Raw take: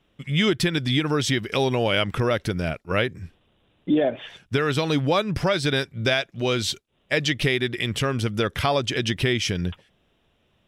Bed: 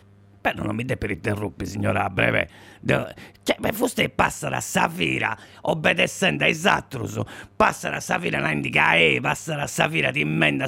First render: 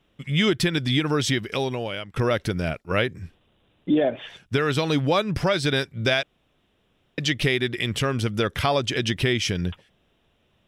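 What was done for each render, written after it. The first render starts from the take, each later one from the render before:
0:01.29–0:02.16: fade out, to −19 dB
0:06.23–0:07.18: fill with room tone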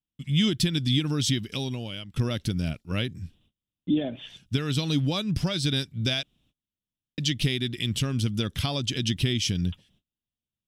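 noise gate −59 dBFS, range −27 dB
flat-topped bell 920 Hz −12.5 dB 2.9 octaves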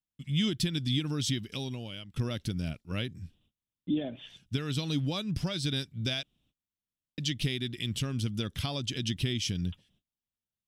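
level −5.5 dB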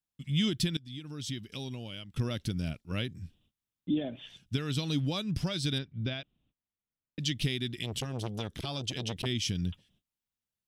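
0:00.77–0:02.04: fade in, from −22 dB
0:05.78–0:07.19: high-frequency loss of the air 320 metres
0:07.83–0:09.26: saturating transformer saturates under 720 Hz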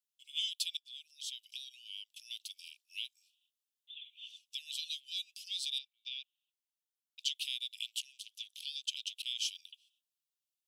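Butterworth high-pass 2,600 Hz 72 dB per octave
dynamic equaliser 5,400 Hz, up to −4 dB, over −54 dBFS, Q 3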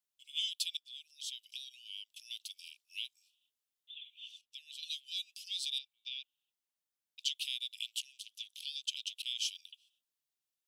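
0:04.41–0:04.83: high-shelf EQ 2,300 Hz −11 dB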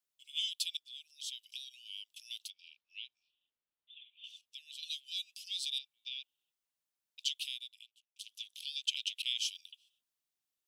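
0:02.50–0:04.24: high-frequency loss of the air 270 metres
0:07.34–0:08.16: fade out and dull
0:08.76–0:09.39: high-pass with resonance 2,000 Hz, resonance Q 3.1

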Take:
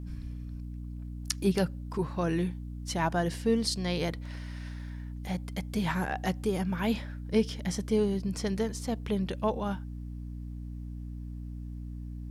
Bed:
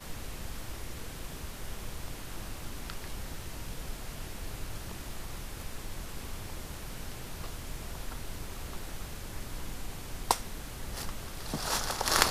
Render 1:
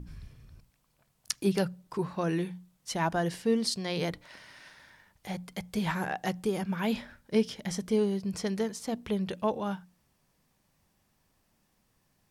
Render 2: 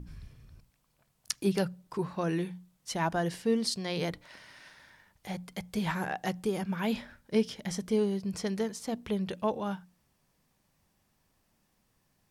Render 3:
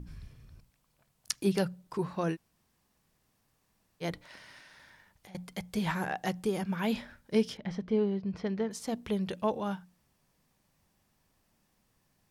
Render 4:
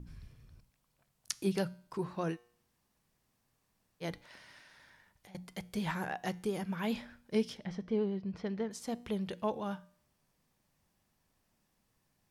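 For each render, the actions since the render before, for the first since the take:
mains-hum notches 60/120/180/240/300 Hz
level −1 dB
0:02.34–0:04.03: fill with room tone, crossfade 0.06 s; 0:04.60–0:05.35: downward compressor, threshold −51 dBFS; 0:07.57–0:08.71: high-frequency loss of the air 290 metres
pitch vibrato 10 Hz 33 cents; tuned comb filter 120 Hz, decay 0.57 s, harmonics all, mix 40%

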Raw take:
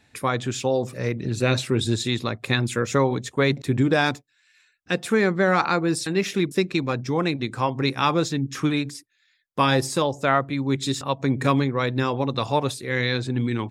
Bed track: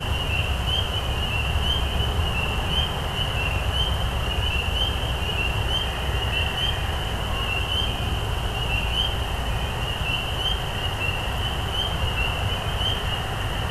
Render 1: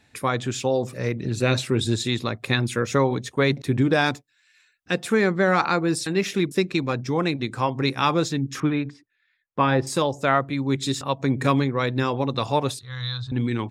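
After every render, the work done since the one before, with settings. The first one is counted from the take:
0:02.45–0:04.08: notch filter 7,400 Hz, Q 8.3
0:08.60–0:09.87: low-pass filter 2,200 Hz
0:12.79–0:13.32: drawn EQ curve 120 Hz 0 dB, 170 Hz −17 dB, 360 Hz −30 dB, 1,200 Hz −2 dB, 2,300 Hz −20 dB, 3,600 Hz 0 dB, 12,000 Hz −24 dB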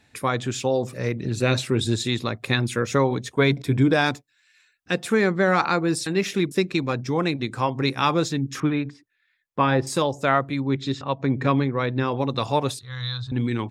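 0:03.35–0:03.93: EQ curve with evenly spaced ripples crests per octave 1.7, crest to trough 7 dB
0:10.60–0:12.12: high-frequency loss of the air 170 metres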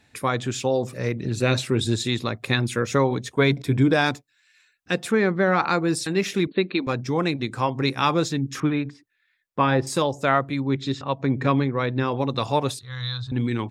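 0:05.11–0:05.68: high-frequency loss of the air 140 metres
0:06.47–0:06.87: linear-phase brick-wall band-pass 170–4,500 Hz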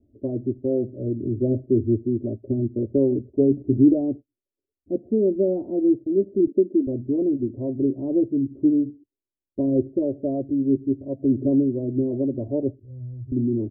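Butterworth low-pass 540 Hz 48 dB per octave
comb filter 3.1 ms, depth 99%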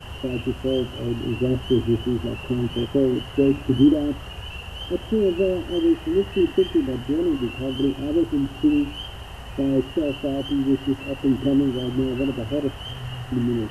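mix in bed track −11 dB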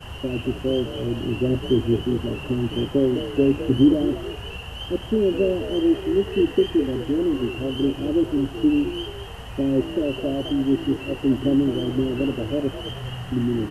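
echo with shifted repeats 209 ms, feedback 34%, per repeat +54 Hz, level −12 dB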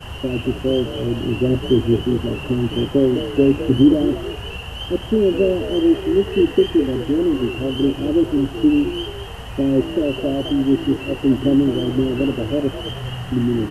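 level +4 dB
brickwall limiter −3 dBFS, peak gain reduction 1.5 dB

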